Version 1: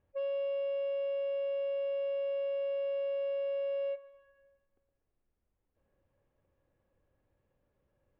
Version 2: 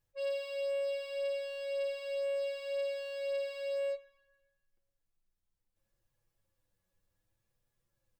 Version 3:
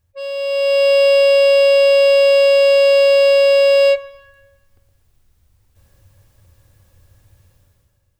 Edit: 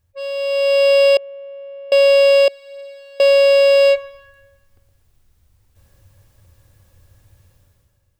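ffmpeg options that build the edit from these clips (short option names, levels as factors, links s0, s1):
-filter_complex "[2:a]asplit=3[s0][s1][s2];[s0]atrim=end=1.172[s3];[0:a]atrim=start=1.168:end=1.922[s4];[s1]atrim=start=1.918:end=2.482[s5];[1:a]atrim=start=2.478:end=3.202[s6];[s2]atrim=start=3.198[s7];[s3][s4]acrossfade=d=0.004:c1=hsin:c2=hsin[s8];[s8][s5]acrossfade=d=0.004:c1=hsin:c2=hsin[s9];[s9][s6]acrossfade=d=0.004:c1=hsin:c2=hsin[s10];[s10][s7]acrossfade=d=0.004:c1=hsin:c2=hsin"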